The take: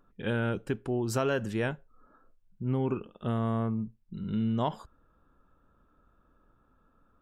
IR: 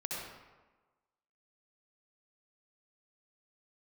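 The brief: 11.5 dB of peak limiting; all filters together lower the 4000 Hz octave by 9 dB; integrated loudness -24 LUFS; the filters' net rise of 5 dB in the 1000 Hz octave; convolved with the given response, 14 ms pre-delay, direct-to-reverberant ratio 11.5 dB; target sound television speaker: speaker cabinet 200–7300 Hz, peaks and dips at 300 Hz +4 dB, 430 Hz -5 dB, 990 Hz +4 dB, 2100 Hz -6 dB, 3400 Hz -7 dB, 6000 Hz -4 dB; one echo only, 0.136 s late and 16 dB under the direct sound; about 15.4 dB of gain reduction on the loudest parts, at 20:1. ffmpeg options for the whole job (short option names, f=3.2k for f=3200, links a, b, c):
-filter_complex "[0:a]equalizer=f=1k:t=o:g=4.5,equalizer=f=4k:t=o:g=-7.5,acompressor=threshold=-38dB:ratio=20,alimiter=level_in=16dB:limit=-24dB:level=0:latency=1,volume=-16dB,aecho=1:1:136:0.158,asplit=2[a][b];[1:a]atrim=start_sample=2205,adelay=14[c];[b][c]afir=irnorm=-1:irlink=0,volume=-14dB[d];[a][d]amix=inputs=2:normalize=0,highpass=f=200:w=0.5412,highpass=f=200:w=1.3066,equalizer=f=300:t=q:w=4:g=4,equalizer=f=430:t=q:w=4:g=-5,equalizer=f=990:t=q:w=4:g=4,equalizer=f=2.1k:t=q:w=4:g=-6,equalizer=f=3.4k:t=q:w=4:g=-7,equalizer=f=6k:t=q:w=4:g=-4,lowpass=f=7.3k:w=0.5412,lowpass=f=7.3k:w=1.3066,volume=28dB"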